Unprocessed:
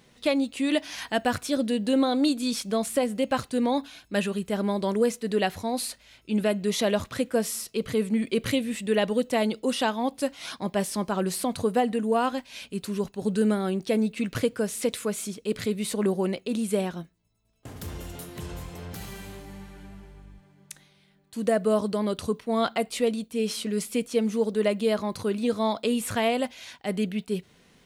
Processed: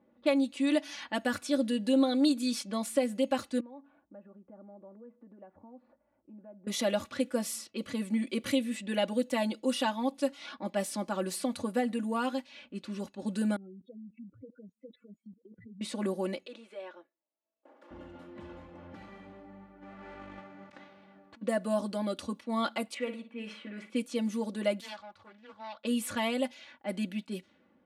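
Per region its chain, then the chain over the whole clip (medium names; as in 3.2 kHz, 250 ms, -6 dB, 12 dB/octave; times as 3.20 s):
3.60–6.67 s: low-pass 1 kHz + bass shelf 500 Hz -5 dB + compression 3:1, threshold -47 dBFS
13.56–15.81 s: spectral contrast enhancement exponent 3.6 + low-pass 3.4 kHz + level held to a coarse grid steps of 20 dB
16.46–17.91 s: high-pass 420 Hz 24 dB/octave + peaking EQ 770 Hz -3.5 dB 2.1 oct + compression 4:1, threshold -33 dBFS
19.81–21.41 s: formants flattened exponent 0.6 + low-pass 8.5 kHz + compressor with a negative ratio -50 dBFS
22.94–23.90 s: high-pass 480 Hz 6 dB/octave + resonant high shelf 3.3 kHz -13.5 dB, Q 1.5 + flutter echo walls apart 9.7 m, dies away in 0.35 s
24.80–25.85 s: amplifier tone stack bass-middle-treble 10-0-10 + loudspeaker Doppler distortion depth 0.44 ms
whole clip: high-pass 130 Hz 12 dB/octave; level-controlled noise filter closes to 850 Hz, open at -24.5 dBFS; comb 3.5 ms, depth 91%; trim -7.5 dB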